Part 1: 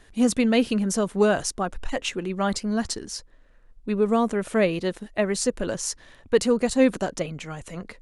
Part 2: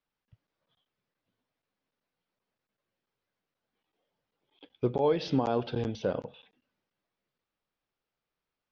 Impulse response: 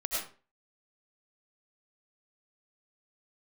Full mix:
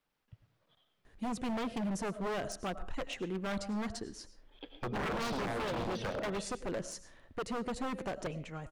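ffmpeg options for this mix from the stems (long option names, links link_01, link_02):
-filter_complex "[0:a]highshelf=frequency=2500:gain=-8,alimiter=limit=-15.5dB:level=0:latency=1:release=134,adelay=1050,volume=-8dB,asplit=2[link_01][link_02];[link_02]volume=-18dB[link_03];[1:a]acompressor=threshold=-37dB:ratio=3,volume=3dB,asplit=2[link_04][link_05];[link_05]volume=-8.5dB[link_06];[2:a]atrim=start_sample=2205[link_07];[link_03][link_06]amix=inputs=2:normalize=0[link_08];[link_08][link_07]afir=irnorm=-1:irlink=0[link_09];[link_01][link_04][link_09]amix=inputs=3:normalize=0,highshelf=frequency=5500:gain=-3.5,aeval=exprs='0.0316*(abs(mod(val(0)/0.0316+3,4)-2)-1)':channel_layout=same"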